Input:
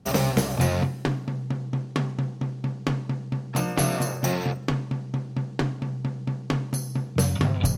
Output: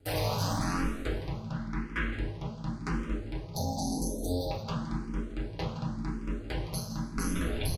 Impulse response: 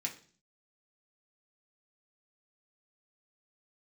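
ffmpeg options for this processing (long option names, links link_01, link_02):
-filter_complex "[0:a]asettb=1/sr,asplit=3[link_01][link_02][link_03];[link_01]atrim=end=1.534[link_04];[link_02]atrim=start=1.53:end=2.13,asetpts=PTS-STARTPTS,afade=type=in:duration=0.004:curve=qsin,afade=type=out:start_time=0.596:duration=0.004:curve=qsin,equalizer=frequency=500:width_type=o:width=1:gain=-5,equalizer=frequency=2000:width_type=o:width=1:gain=12,equalizer=frequency=8000:width_type=o:width=1:gain=-8[link_05];[link_03]atrim=start=2.126[link_06];[link_04][link_05]acrossfade=duration=0.004:curve1=hsin:curve2=qsin[link_07];[link_07][link_06]acrossfade=duration=0.004:curve1=qsin:curve2=hsin,alimiter=limit=-19dB:level=0:latency=1:release=16,aeval=exprs='val(0)*sin(2*PI*89*n/s)':channel_layout=same,asettb=1/sr,asplit=3[link_08][link_09][link_10];[link_08]atrim=end=3.454[link_11];[link_09]atrim=start=3.45:end=4.51,asetpts=PTS-STARTPTS,afade=type=in:duration=0.004:curve=qsin,afade=type=out:start_time=1.056:duration=0.004:curve=qsin,asuperstop=centerf=1800:order=20:qfactor=0.66[link_12];[link_10]atrim=start=4.506[link_13];[link_11][link_12]acrossfade=duration=0.004:curve1=hsin:curve2=qsin[link_14];[link_14][link_13]acrossfade=duration=0.004:curve1=qsin:curve2=hsin,aecho=1:1:166:0.251[link_15];[1:a]atrim=start_sample=2205,asetrate=26019,aresample=44100[link_16];[link_15][link_16]afir=irnorm=-1:irlink=0,asplit=2[link_17][link_18];[link_18]afreqshift=0.93[link_19];[link_17][link_19]amix=inputs=2:normalize=1"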